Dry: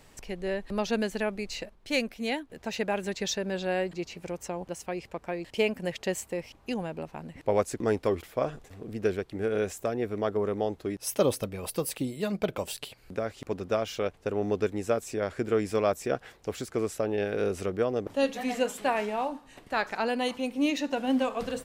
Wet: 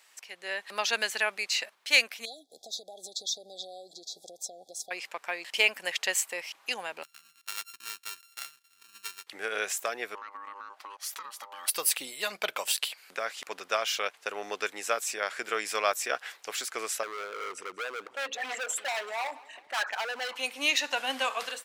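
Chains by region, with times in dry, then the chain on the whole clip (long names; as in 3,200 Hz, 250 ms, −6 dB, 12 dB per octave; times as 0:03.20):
0:02.25–0:04.91: high-shelf EQ 8,600 Hz −8 dB + downward compressor 12 to 1, threshold −35 dBFS + linear-phase brick-wall band-stop 810–3,300 Hz
0:07.03–0:09.27: samples sorted by size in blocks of 32 samples + guitar amp tone stack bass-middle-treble 6-0-2
0:10.15–0:11.68: high-shelf EQ 6,100 Hz −7.5 dB + downward compressor 20 to 1, threshold −38 dBFS + ring modulation 700 Hz
0:17.03–0:20.36: spectral envelope exaggerated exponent 2 + hard clipping −31 dBFS + repeating echo 191 ms, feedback 54%, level −22 dB
whole clip: high-pass filter 1,300 Hz 12 dB per octave; automatic gain control gain up to 9.5 dB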